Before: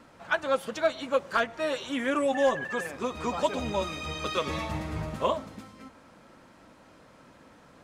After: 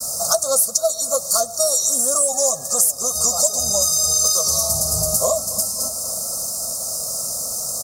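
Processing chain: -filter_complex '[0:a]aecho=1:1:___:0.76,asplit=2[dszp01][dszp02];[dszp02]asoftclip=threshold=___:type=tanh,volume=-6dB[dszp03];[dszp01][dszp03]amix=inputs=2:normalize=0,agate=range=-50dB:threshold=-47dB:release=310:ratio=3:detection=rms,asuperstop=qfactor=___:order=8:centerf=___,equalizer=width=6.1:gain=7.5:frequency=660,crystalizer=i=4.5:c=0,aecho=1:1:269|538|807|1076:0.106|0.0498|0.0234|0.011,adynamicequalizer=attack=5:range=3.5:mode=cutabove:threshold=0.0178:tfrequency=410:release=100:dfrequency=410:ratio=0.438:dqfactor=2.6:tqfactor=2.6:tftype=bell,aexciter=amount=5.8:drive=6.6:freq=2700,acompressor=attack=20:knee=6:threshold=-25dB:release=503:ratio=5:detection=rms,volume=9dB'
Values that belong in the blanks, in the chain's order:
1.6, -24dB, 0.64, 2500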